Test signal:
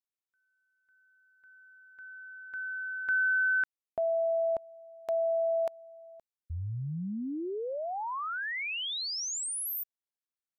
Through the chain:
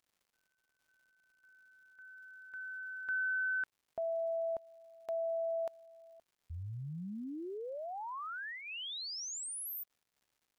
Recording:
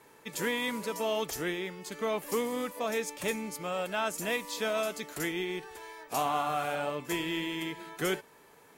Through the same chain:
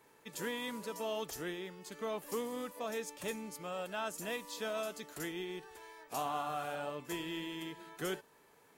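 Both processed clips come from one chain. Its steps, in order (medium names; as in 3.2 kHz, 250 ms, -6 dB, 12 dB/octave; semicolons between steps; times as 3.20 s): dynamic bell 2.2 kHz, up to -7 dB, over -55 dBFS, Q 5.9; crackle 270 per s -57 dBFS; trim -7 dB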